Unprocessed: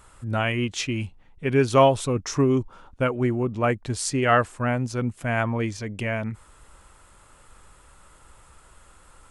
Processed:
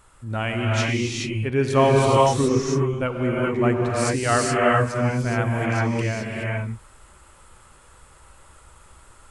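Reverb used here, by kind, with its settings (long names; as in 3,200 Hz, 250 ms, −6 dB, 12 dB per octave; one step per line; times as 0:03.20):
reverb whose tail is shaped and stops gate 450 ms rising, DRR −3.5 dB
level −2.5 dB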